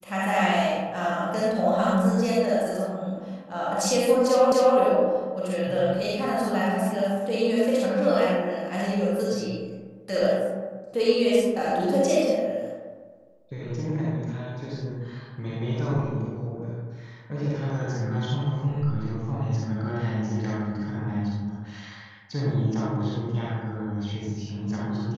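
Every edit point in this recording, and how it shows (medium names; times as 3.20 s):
4.52 s: repeat of the last 0.25 s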